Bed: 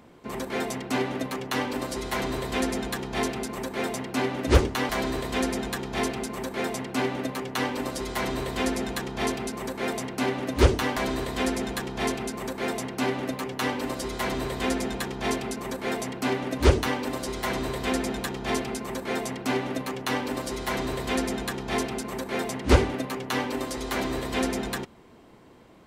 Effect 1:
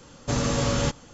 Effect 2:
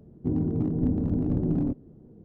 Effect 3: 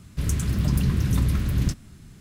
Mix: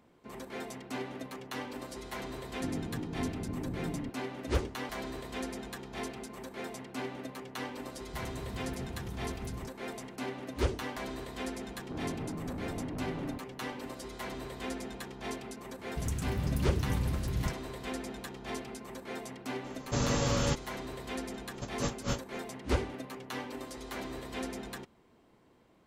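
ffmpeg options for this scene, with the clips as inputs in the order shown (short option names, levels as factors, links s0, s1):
-filter_complex "[2:a]asplit=2[s0][s1];[3:a]asplit=2[s2][s3];[1:a]asplit=2[s4][s5];[0:a]volume=0.266[s6];[s2]alimiter=limit=0.133:level=0:latency=1:release=298[s7];[s1]asoftclip=type=tanh:threshold=0.0251[s8];[s5]aeval=exprs='val(0)*pow(10,-33*(0.5-0.5*cos(2*PI*3.9*n/s))/20)':c=same[s9];[s0]atrim=end=2.24,asetpts=PTS-STARTPTS,volume=0.251,afade=t=in:d=0.004:c=hsin,afade=t=out:st=2.236:d=0.004:c=hsin,adelay=2370[s10];[s7]atrim=end=2.2,asetpts=PTS-STARTPTS,volume=0.168,afade=t=in:d=0.004:c=hsin,afade=t=out:st=2.196:d=0.004:c=hsin,adelay=7960[s11];[s8]atrim=end=2.24,asetpts=PTS-STARTPTS,volume=0.562,afade=t=in:d=0.004:c=hsin,afade=t=out:st=2.236:d=0.004:c=hsin,adelay=11650[s12];[s3]atrim=end=2.2,asetpts=PTS-STARTPTS,volume=0.316,afade=t=in:d=0.004:c=hsin,afade=t=out:st=2.196:d=0.004:c=hsin,adelay=15790[s13];[s4]atrim=end=1.13,asetpts=PTS-STARTPTS,volume=0.562,afade=t=in:d=0.004:c=hsin,afade=t=out:st=1.126:d=0.004:c=hsin,adelay=19640[s14];[s9]atrim=end=1.13,asetpts=PTS-STARTPTS,volume=0.596,afade=t=in:d=0.004:c=hsin,afade=t=out:st=1.126:d=0.004:c=hsin,adelay=21340[s15];[s6][s10][s11][s12][s13][s14][s15]amix=inputs=7:normalize=0"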